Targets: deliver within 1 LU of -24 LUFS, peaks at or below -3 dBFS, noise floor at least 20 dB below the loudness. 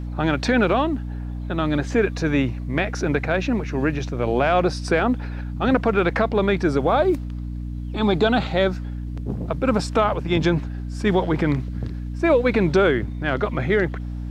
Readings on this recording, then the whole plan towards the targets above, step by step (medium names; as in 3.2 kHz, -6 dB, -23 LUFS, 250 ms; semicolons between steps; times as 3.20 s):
hum 60 Hz; highest harmonic 300 Hz; hum level -27 dBFS; loudness -22.0 LUFS; peak level -5.5 dBFS; loudness target -24.0 LUFS
-> de-hum 60 Hz, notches 5; trim -2 dB